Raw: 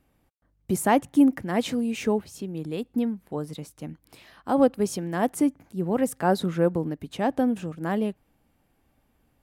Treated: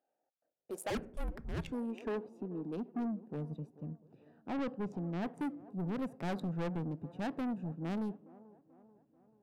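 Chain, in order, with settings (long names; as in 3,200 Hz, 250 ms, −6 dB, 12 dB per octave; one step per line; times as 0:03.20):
adaptive Wiener filter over 41 samples
low-shelf EQ 160 Hz −7.5 dB
high-pass filter sweep 740 Hz → 140 Hz, 0:00.11–0:03.54
on a send at −21.5 dB: convolution reverb RT60 0.55 s, pre-delay 11 ms
on the sum: soft clipping −27.5 dBFS, distortion −5 dB
delay with a band-pass on its return 437 ms, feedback 52%, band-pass 530 Hz, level −17 dB
0:00.90–0:01.72: frequency shifter −310 Hz
0:03.70–0:05.40: parametric band 11,000 Hz −13.5 dB 1.4 octaves
level −5.5 dB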